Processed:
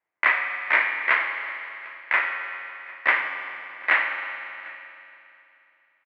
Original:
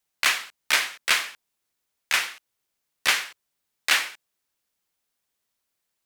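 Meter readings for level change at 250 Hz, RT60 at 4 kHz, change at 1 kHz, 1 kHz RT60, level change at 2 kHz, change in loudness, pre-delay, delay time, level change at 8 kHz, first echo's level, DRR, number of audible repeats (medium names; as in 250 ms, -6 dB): +1.5 dB, 2.9 s, +5.0 dB, 2.8 s, +4.5 dB, 0.0 dB, 11 ms, 751 ms, under -35 dB, -22.5 dB, 4.0 dB, 1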